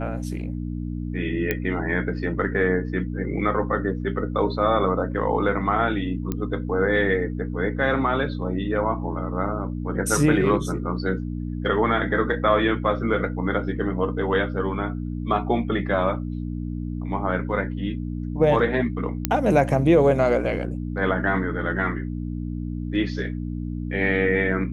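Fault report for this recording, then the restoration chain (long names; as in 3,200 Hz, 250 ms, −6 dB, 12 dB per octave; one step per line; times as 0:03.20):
mains hum 60 Hz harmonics 5 −29 dBFS
0:01.51: click −10 dBFS
0:06.32: click −13 dBFS
0:19.25: click −4 dBFS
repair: click removal
hum removal 60 Hz, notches 5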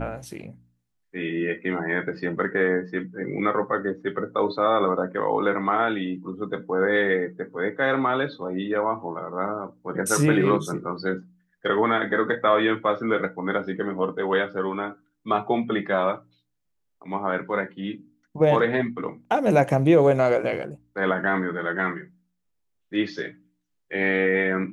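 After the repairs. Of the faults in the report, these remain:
none of them is left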